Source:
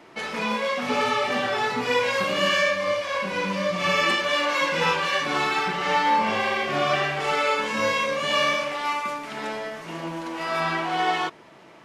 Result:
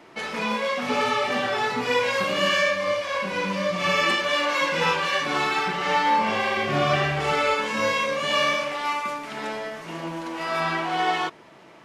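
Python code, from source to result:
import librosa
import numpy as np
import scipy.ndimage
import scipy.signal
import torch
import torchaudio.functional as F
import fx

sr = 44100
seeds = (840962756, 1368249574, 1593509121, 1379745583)

y = fx.peak_eq(x, sr, hz=64.0, db=15.0, octaves=2.5, at=(6.57, 7.54))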